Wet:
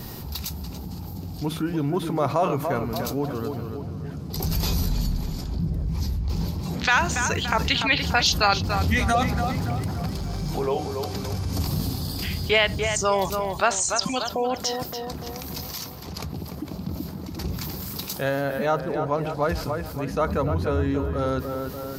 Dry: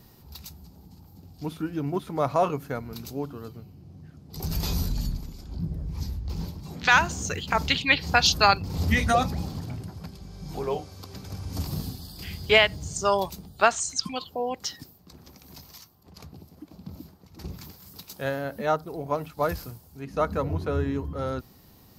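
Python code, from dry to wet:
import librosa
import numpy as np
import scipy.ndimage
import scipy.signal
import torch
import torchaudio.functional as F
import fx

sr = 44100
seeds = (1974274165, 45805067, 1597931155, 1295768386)

y = fx.law_mismatch(x, sr, coded='mu', at=(9.57, 10.51))
y = fx.air_absorb(y, sr, metres=51.0, at=(18.79, 19.86))
y = fx.echo_tape(y, sr, ms=288, feedback_pct=44, wet_db=-9.0, lp_hz=2300.0, drive_db=8.0, wow_cents=36)
y = fx.env_flatten(y, sr, amount_pct=50)
y = F.gain(torch.from_numpy(y), -2.5).numpy()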